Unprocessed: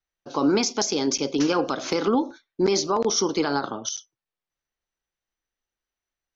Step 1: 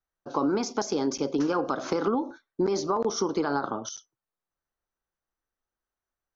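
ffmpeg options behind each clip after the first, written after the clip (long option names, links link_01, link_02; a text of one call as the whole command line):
ffmpeg -i in.wav -af "highshelf=frequency=1800:width_type=q:width=1.5:gain=-7.5,acompressor=threshold=-22dB:ratio=6" out.wav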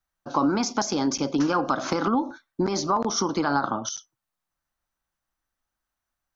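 ffmpeg -i in.wav -af "equalizer=frequency=430:width_type=o:width=0.57:gain=-11,volume=6dB" out.wav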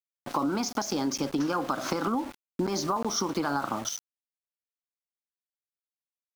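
ffmpeg -i in.wav -af "aeval=exprs='val(0)*gte(abs(val(0)),0.0168)':channel_layout=same,acompressor=threshold=-26dB:ratio=3" out.wav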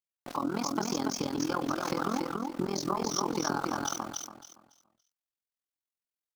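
ffmpeg -i in.wav -af "aecho=1:1:282|564|846|1128:0.708|0.191|0.0516|0.0139,tremolo=f=42:d=0.919" out.wav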